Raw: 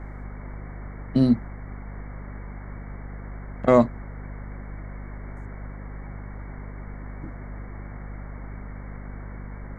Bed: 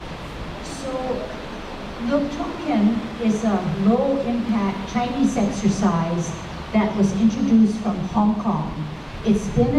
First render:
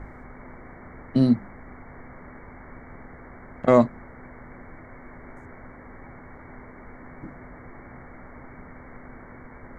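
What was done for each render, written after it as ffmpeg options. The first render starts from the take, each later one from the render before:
ffmpeg -i in.wav -af "bandreject=frequency=50:width_type=h:width=4,bandreject=frequency=100:width_type=h:width=4,bandreject=frequency=150:width_type=h:width=4,bandreject=frequency=200:width_type=h:width=4" out.wav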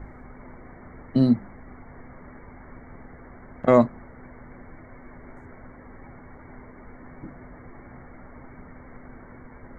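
ffmpeg -i in.wav -af "afftdn=noise_reduction=6:noise_floor=-45" out.wav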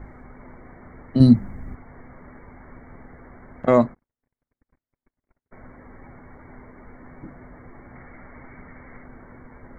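ffmpeg -i in.wav -filter_complex "[0:a]asettb=1/sr,asplit=3[link_01][link_02][link_03];[link_01]atrim=end=1.204[link_04];[link_02]atrim=start=1.2:end=1.75,asetpts=PTS-STARTPTS,afade=type=in:duration=0.004:curve=qsin,afade=type=out:start_time=0.546:duration=0.004:curve=qsin,bass=frequency=250:gain=11,treble=frequency=4000:gain=14[link_05];[link_03]atrim=start=1.746[link_06];[link_04][link_05]acrossfade=duration=0.004:curve1=hsin:curve2=qsin[link_07];[link_07][link_06]acrossfade=duration=0.004:curve1=qsin:curve2=hsin,asplit=3[link_08][link_09][link_10];[link_08]afade=type=out:start_time=3.93:duration=0.02[link_11];[link_09]agate=range=-51dB:threshold=-39dB:ratio=16:release=100:detection=peak,afade=type=in:start_time=3.93:duration=0.02,afade=type=out:start_time=5.51:duration=0.02[link_12];[link_10]afade=type=in:start_time=5.51:duration=0.02[link_13];[link_11][link_12][link_13]amix=inputs=3:normalize=0,asettb=1/sr,asplit=3[link_14][link_15][link_16];[link_14]atrim=end=7.954[link_17];[link_15]atrim=start=7.95:end=9.04,asetpts=PTS-STARTPTS,afade=type=in:duration=0.004:curve=qsin,afade=type=out:start_time=1.086:duration=0.004:curve=qsin,lowpass=frequency=2400:width_type=q:width=2.2[link_18];[link_16]atrim=start=9.036[link_19];[link_17][link_18]acrossfade=duration=0.004:curve1=hsin:curve2=qsin[link_20];[link_20][link_19]acrossfade=duration=0.004:curve1=qsin:curve2=hsin" out.wav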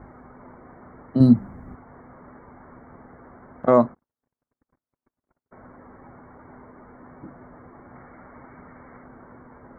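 ffmpeg -i in.wav -af "highpass=frequency=130:poles=1,highshelf=frequency=1700:width_type=q:width=1.5:gain=-8" out.wav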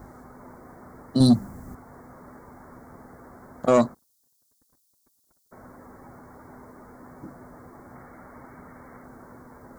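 ffmpeg -i in.wav -af "aexciter=amount=12.6:drive=7.5:freq=3700,asoftclip=type=tanh:threshold=-9.5dB" out.wav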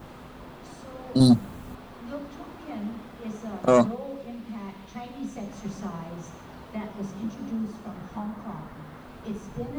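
ffmpeg -i in.wav -i bed.wav -filter_complex "[1:a]volume=-16dB[link_01];[0:a][link_01]amix=inputs=2:normalize=0" out.wav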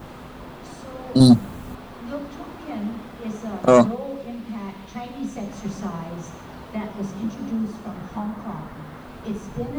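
ffmpeg -i in.wav -af "volume=5dB" out.wav

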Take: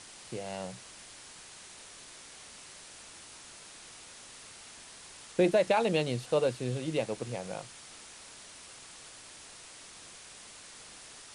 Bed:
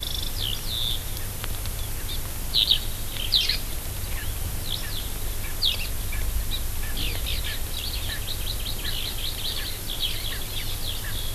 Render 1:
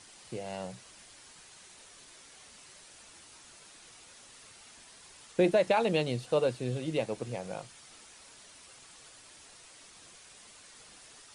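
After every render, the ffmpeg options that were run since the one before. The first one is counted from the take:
ffmpeg -i in.wav -af "afftdn=noise_reduction=6:noise_floor=-51" out.wav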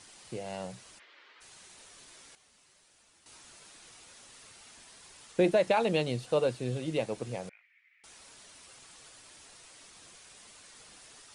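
ffmpeg -i in.wav -filter_complex "[0:a]asplit=3[link_01][link_02][link_03];[link_01]afade=type=out:start_time=0.98:duration=0.02[link_04];[link_02]highpass=frequency=360:width=0.5412,highpass=frequency=360:width=1.3066,equalizer=frequency=730:width_type=q:width=4:gain=-8,equalizer=frequency=1300:width_type=q:width=4:gain=3,equalizer=frequency=2000:width_type=q:width=4:gain=5,lowpass=frequency=3600:width=0.5412,lowpass=frequency=3600:width=1.3066,afade=type=in:start_time=0.98:duration=0.02,afade=type=out:start_time=1.4:duration=0.02[link_05];[link_03]afade=type=in:start_time=1.4:duration=0.02[link_06];[link_04][link_05][link_06]amix=inputs=3:normalize=0,asettb=1/sr,asplit=3[link_07][link_08][link_09];[link_07]atrim=end=7.494[link_10];[link_08]atrim=start=7.49:end=8.04,asetpts=PTS-STARTPTS,afade=type=in:duration=0.004:curve=qsin,afade=type=out:start_time=0.546:duration=0.004:curve=qsin,asuperpass=centerf=2100:order=4:qfactor=3.9[link_11];[link_09]atrim=start=8.036[link_12];[link_10][link_11]acrossfade=duration=0.004:curve1=hsin:curve2=qsin[link_13];[link_13][link_12]acrossfade=duration=0.004:curve1=qsin:curve2=hsin,asplit=3[link_14][link_15][link_16];[link_14]atrim=end=2.352[link_17];[link_15]atrim=start=2.348:end=3.262,asetpts=PTS-STARTPTS,volume=-10.5dB[link_18];[link_16]atrim=start=3.258[link_19];[link_17][link_18]acrossfade=duration=0.004:curve1=hsin:curve2=hsin[link_20];[link_20][link_19]acrossfade=duration=0.004:curve1=hsin:curve2=hsin" out.wav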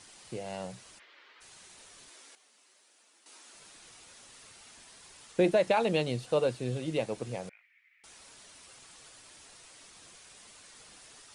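ffmpeg -i in.wav -filter_complex "[0:a]asettb=1/sr,asplit=3[link_01][link_02][link_03];[link_01]atrim=end=2.094[link_04];[link_02]atrim=start=2.09:end=3.55,asetpts=PTS-STARTPTS,afade=type=in:duration=0.004:curve=qsin,afade=type=out:start_time=1.456:duration=0.004:curve=qsin,highpass=frequency=250:width=0.5412,highpass=frequency=250:width=1.3066[link_05];[link_03]atrim=start=3.546[link_06];[link_04][link_05]acrossfade=duration=0.004:curve1=hsin:curve2=qsin[link_07];[link_07][link_06]acrossfade=duration=0.004:curve1=qsin:curve2=hsin" out.wav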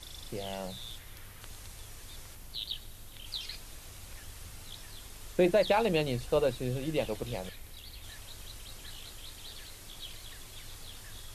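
ffmpeg -i in.wav -i bed.wav -filter_complex "[1:a]volume=-18dB[link_01];[0:a][link_01]amix=inputs=2:normalize=0" out.wav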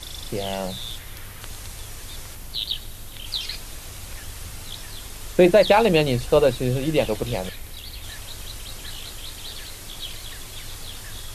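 ffmpeg -i in.wav -af "volume=10.5dB" out.wav

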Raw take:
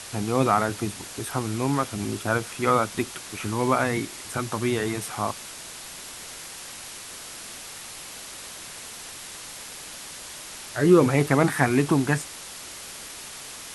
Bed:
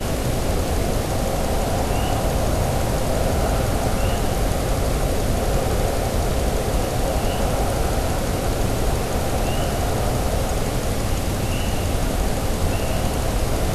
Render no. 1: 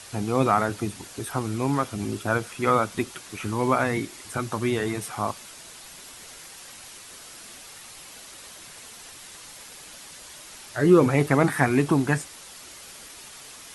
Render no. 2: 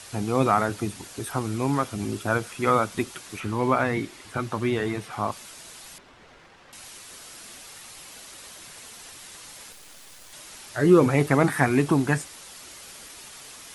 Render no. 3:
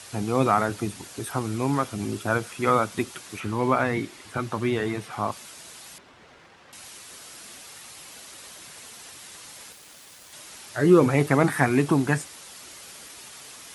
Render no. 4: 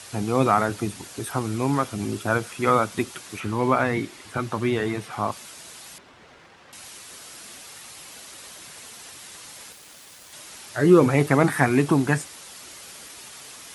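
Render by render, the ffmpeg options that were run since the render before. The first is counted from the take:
ffmpeg -i in.wav -af "afftdn=noise_reduction=6:noise_floor=-40" out.wav
ffmpeg -i in.wav -filter_complex "[0:a]asettb=1/sr,asplit=3[link_01][link_02][link_03];[link_01]atrim=end=3.404[link_04];[link_02]atrim=start=3.4:end=5.32,asetpts=PTS-STARTPTS,afade=type=in:duration=0.004:curve=qsin,afade=type=out:start_time=1.916:duration=0.004:curve=qsin,acrossover=split=4400[link_05][link_06];[link_06]acompressor=threshold=-50dB:ratio=4:attack=1:release=60[link_07];[link_05][link_07]amix=inputs=2:normalize=0[link_08];[link_03]atrim=start=5.316[link_09];[link_04][link_08]acrossfade=duration=0.004:curve1=hsin:curve2=qsin[link_10];[link_10][link_09]acrossfade=duration=0.004:curve1=qsin:curve2=hsin,asettb=1/sr,asplit=3[link_11][link_12][link_13];[link_11]atrim=end=5.984[link_14];[link_12]atrim=start=5.98:end=6.73,asetpts=PTS-STARTPTS,afade=type=in:duration=0.004:curve=qsin,afade=type=out:start_time=0.746:duration=0.004:curve=qsin,adynamicsmooth=sensitivity=3:basefreq=2000[link_15];[link_13]atrim=start=6.726[link_16];[link_14][link_15]acrossfade=duration=0.004:curve1=hsin:curve2=qsin[link_17];[link_17][link_16]acrossfade=duration=0.004:curve1=qsin:curve2=hsin,asettb=1/sr,asplit=3[link_18][link_19][link_20];[link_18]atrim=end=9.724[link_21];[link_19]atrim=start=9.72:end=10.33,asetpts=PTS-STARTPTS,afade=type=in:duration=0.004:curve=qsin,afade=type=out:start_time=0.606:duration=0.004:curve=qsin,acrusher=bits=6:dc=4:mix=0:aa=0.000001[link_22];[link_20]atrim=start=10.326[link_23];[link_21][link_22]acrossfade=duration=0.004:curve1=hsin:curve2=qsin[link_24];[link_24][link_23]acrossfade=duration=0.004:curve1=qsin:curve2=hsin" out.wav
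ffmpeg -i in.wav -af "highpass=63" out.wav
ffmpeg -i in.wav -af "volume=1.5dB" out.wav

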